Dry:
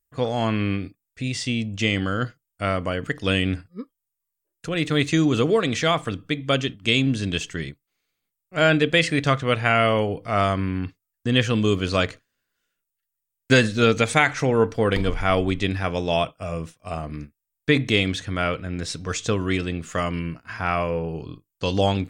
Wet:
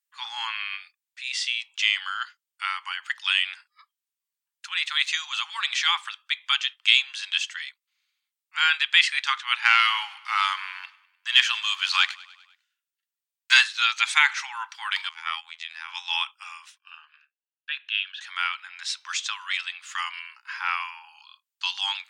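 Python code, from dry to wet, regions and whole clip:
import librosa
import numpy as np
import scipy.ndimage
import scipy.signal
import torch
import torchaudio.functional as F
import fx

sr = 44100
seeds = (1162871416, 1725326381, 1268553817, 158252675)

y = fx.chain(x, sr, fx.leveller(passes=1),
    fx.echo_feedback(ms=100, feedback_pct=58, wet_db=-21), at=(9.62, 13.64))
y = fx.chain(y, sr, fx.level_steps(step_db=10),
    fx.robotise(hz=82.1), at=(15.09, 15.89))
y = fx.chain(y, sr, fx.double_bandpass(hz=2100.0, octaves=0.79),
    fx.air_absorb(metres=64.0), at=(16.78, 18.21))
y = scipy.signal.sosfilt(scipy.signal.cheby1(8, 1.0, 830.0, 'highpass', fs=sr, output='sos'), y)
y = fx.peak_eq(y, sr, hz=3200.0, db=11.5, octaves=2.3)
y = F.gain(torch.from_numpy(y), -6.5).numpy()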